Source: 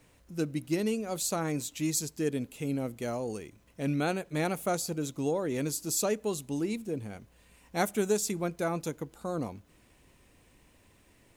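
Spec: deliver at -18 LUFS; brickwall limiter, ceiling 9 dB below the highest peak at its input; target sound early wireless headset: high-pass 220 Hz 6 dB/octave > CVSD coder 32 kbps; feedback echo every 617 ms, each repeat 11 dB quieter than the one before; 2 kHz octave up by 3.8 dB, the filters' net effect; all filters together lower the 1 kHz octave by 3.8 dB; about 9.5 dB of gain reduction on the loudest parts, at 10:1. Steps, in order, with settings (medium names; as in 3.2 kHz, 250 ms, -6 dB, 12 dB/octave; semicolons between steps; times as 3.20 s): peaking EQ 1 kHz -7.5 dB; peaking EQ 2 kHz +7.5 dB; compression 10:1, threshold -33 dBFS; peak limiter -32.5 dBFS; high-pass 220 Hz 6 dB/octave; feedback delay 617 ms, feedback 28%, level -11 dB; CVSD coder 32 kbps; trim +26 dB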